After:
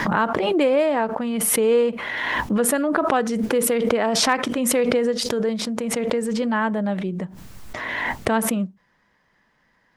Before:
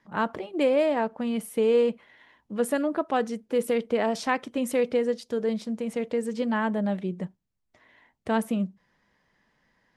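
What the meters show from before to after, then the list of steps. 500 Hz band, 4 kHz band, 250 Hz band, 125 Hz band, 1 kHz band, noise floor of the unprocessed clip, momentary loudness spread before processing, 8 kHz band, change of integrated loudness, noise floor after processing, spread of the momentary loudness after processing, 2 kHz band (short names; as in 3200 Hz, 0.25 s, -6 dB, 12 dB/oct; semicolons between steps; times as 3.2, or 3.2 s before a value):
+4.5 dB, +12.5 dB, +5.0 dB, +6.5 dB, +7.0 dB, -75 dBFS, 8 LU, +17.5 dB, +5.5 dB, -65 dBFS, 8 LU, +9.5 dB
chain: bell 1300 Hz +4 dB 1.3 oct; hard clip -10 dBFS, distortion -46 dB; backwards sustainer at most 22 dB/s; gain +2.5 dB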